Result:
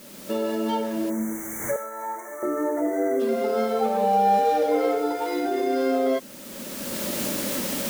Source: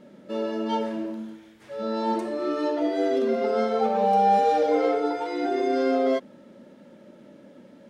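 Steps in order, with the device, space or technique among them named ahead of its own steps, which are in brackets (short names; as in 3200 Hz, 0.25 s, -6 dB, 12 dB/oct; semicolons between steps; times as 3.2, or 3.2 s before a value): cheap recorder with automatic gain (white noise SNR 23 dB; recorder AGC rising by 20 dB/s); 1.1–3.2 spectral gain 2300–5800 Hz -27 dB; 1.76–2.43 HPF 940 Hz 12 dB/oct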